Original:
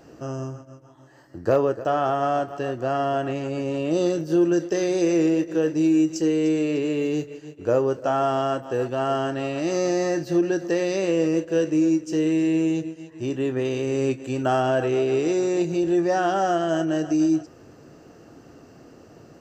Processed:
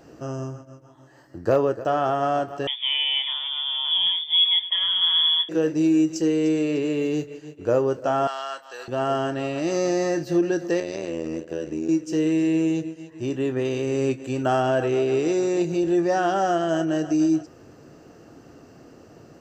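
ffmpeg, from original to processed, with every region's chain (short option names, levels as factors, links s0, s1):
-filter_complex "[0:a]asettb=1/sr,asplit=3[s0][s1][s2];[s0]atrim=end=2.674[s3];[s1]atrim=start=2.67:end=5.49,asetpts=PTS-STARTPTS,afade=t=in:d=0.004:c=qsin,afade=t=out:st=2.816:d=0.004:c=qsin,highpass=180,lowpass=f=3100:t=q:w=0.5098,lowpass=f=3100:t=q:w=0.6013,lowpass=f=3100:t=q:w=0.9,lowpass=f=3100:t=q:w=2.563,afreqshift=-3700[s4];[s2]atrim=start=5.486[s5];[s3][s4]acrossfade=d=0.004:c1=hsin:c2=qsin[s6];[s6][s5]acrossfade=d=0.004:c1=qsin:c2=hsin,asettb=1/sr,asplit=3[s7][s8][s9];[s7]atrim=end=8.274[s10];[s8]atrim=start=8.27:end=8.88,asetpts=PTS-STARTPTS,afade=t=in:d=0.004:c=qsin,afade=t=out:st=0.606:d=0.004:c=qsin,highpass=1200,equalizer=f=4200:t=o:w=0.2:g=14[s11];[s9]atrim=start=8.876[s12];[s10][s11]acrossfade=d=0.004:c1=hsin:c2=qsin[s13];[s13][s12]acrossfade=d=0.004:c1=qsin:c2=hsin,asettb=1/sr,asplit=3[s14][s15][s16];[s14]atrim=end=10.804[s17];[s15]atrim=start=10.8:end=11.89,asetpts=PTS-STARTPTS,afade=t=in:d=0.004:c=qsin,afade=t=out:st=1.086:d=0.004:c=qsin,tremolo=f=81:d=0.857,acompressor=threshold=0.0501:ratio=2.5:attack=3.2:release=140:knee=1:detection=peak[s18];[s16]atrim=start=11.886[s19];[s17][s18]acrossfade=d=0.004:c1=hsin:c2=qsin[s20];[s20][s19]acrossfade=d=0.004:c1=qsin:c2=hsin"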